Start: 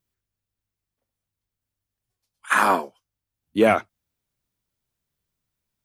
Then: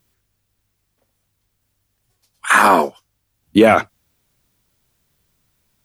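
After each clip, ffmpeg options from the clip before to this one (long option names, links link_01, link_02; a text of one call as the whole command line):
ffmpeg -i in.wav -af "alimiter=level_in=16.5dB:limit=-1dB:release=50:level=0:latency=1,volume=-1dB" out.wav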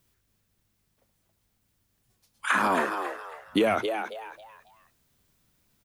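ffmpeg -i in.wav -filter_complex "[0:a]acrossover=split=340|6200[link_01][link_02][link_03];[link_01]acompressor=threshold=-28dB:ratio=4[link_04];[link_02]acompressor=threshold=-19dB:ratio=4[link_05];[link_03]acompressor=threshold=-46dB:ratio=4[link_06];[link_04][link_05][link_06]amix=inputs=3:normalize=0,asplit=5[link_07][link_08][link_09][link_10][link_11];[link_08]adelay=273,afreqshift=110,volume=-7dB[link_12];[link_09]adelay=546,afreqshift=220,volume=-17.2dB[link_13];[link_10]adelay=819,afreqshift=330,volume=-27.3dB[link_14];[link_11]adelay=1092,afreqshift=440,volume=-37.5dB[link_15];[link_07][link_12][link_13][link_14][link_15]amix=inputs=5:normalize=0,volume=-4dB" out.wav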